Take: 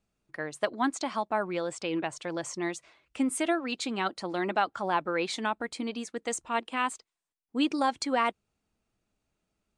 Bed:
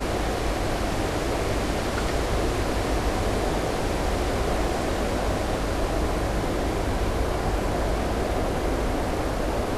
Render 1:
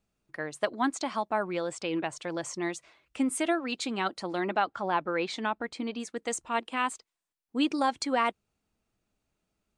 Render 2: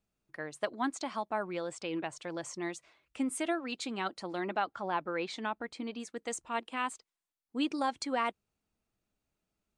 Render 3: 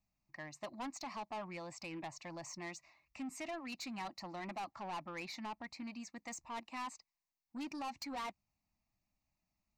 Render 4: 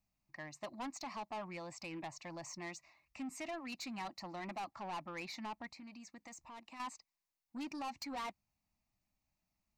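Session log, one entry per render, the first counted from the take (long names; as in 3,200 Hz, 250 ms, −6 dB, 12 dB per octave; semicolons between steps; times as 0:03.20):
0:04.40–0:06.00: high-frequency loss of the air 75 metres
level −5 dB
phaser with its sweep stopped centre 2,200 Hz, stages 8; soft clipping −39 dBFS, distortion −7 dB
0:05.70–0:06.80: downward compressor, threshold −50 dBFS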